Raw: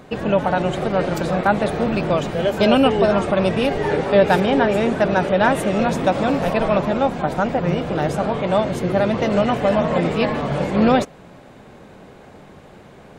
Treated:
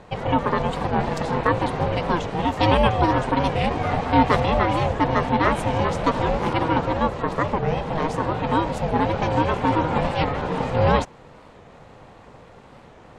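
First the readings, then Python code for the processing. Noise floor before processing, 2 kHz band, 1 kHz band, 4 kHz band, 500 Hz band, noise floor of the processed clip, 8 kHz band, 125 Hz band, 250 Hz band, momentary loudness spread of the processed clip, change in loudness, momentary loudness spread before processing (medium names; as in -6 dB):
-44 dBFS, -3.0 dB, +0.5 dB, -3.0 dB, -6.0 dB, -47 dBFS, -5.0 dB, +0.5 dB, -5.0 dB, 5 LU, -3.0 dB, 5 LU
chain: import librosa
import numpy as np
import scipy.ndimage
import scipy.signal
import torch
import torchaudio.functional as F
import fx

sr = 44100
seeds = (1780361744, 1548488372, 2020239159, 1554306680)

y = scipy.signal.sosfilt(scipy.signal.butter(2, 8400.0, 'lowpass', fs=sr, output='sos'), x)
y = y * np.sin(2.0 * np.pi * 320.0 * np.arange(len(y)) / sr)
y = fx.record_warp(y, sr, rpm=45.0, depth_cents=160.0)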